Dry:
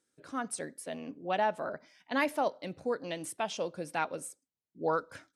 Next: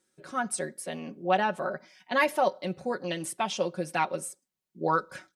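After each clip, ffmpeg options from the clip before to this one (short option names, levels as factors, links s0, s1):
-af "aecho=1:1:5.4:0.73,volume=1.5"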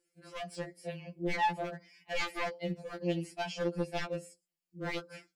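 -filter_complex "[0:a]aeval=exprs='0.0668*(abs(mod(val(0)/0.0668+3,4)-2)-1)':c=same,acrossover=split=6000[s0][s1];[s1]acompressor=threshold=0.002:ratio=4:attack=1:release=60[s2];[s0][s2]amix=inputs=2:normalize=0,afftfilt=real='re*2.83*eq(mod(b,8),0)':imag='im*2.83*eq(mod(b,8),0)':win_size=2048:overlap=0.75,volume=0.75"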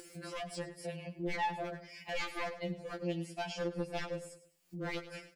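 -af "acompressor=mode=upward:threshold=0.0126:ratio=2.5,aecho=1:1:102|204|306:0.178|0.0587|0.0194,acompressor=threshold=0.00501:ratio=1.5,volume=1.33"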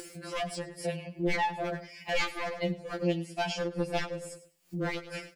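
-af "tremolo=f=2.3:d=0.53,volume=2.66"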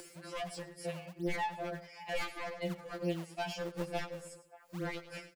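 -filter_complex "[0:a]acrossover=split=270|540|1700[s0][s1][s2][s3];[s0]acrusher=samples=38:mix=1:aa=0.000001:lfo=1:lforange=60.8:lforate=2.2[s4];[s2]aecho=1:1:585:0.2[s5];[s3]asoftclip=type=hard:threshold=0.0178[s6];[s4][s1][s5][s6]amix=inputs=4:normalize=0,volume=0.501"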